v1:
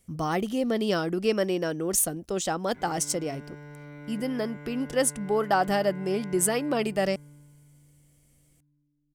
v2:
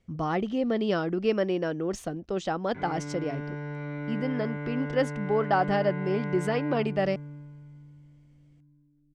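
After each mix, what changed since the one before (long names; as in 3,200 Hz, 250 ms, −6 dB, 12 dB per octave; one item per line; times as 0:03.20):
background +9.0 dB
master: add high-frequency loss of the air 200 metres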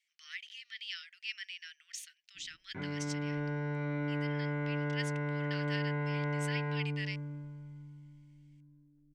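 speech: add Butterworth high-pass 1,900 Hz 48 dB per octave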